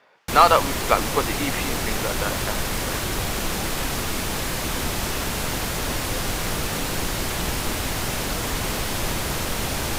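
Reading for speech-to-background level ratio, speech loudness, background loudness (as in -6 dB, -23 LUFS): 3.5 dB, -22.0 LUFS, -25.5 LUFS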